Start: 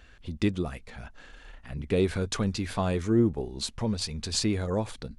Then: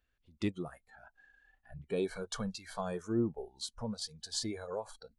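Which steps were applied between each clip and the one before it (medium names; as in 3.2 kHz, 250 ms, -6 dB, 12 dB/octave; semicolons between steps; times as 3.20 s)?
spectral noise reduction 19 dB; trim -7.5 dB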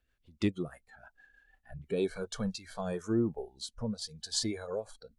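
rotary cabinet horn 6.3 Hz, later 0.8 Hz, at 1.90 s; trim +4.5 dB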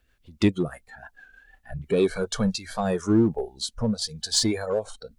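in parallel at -9 dB: hard clipper -31.5 dBFS, distortion -8 dB; on the sum: warped record 33 1/3 rpm, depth 100 cents; trim +8 dB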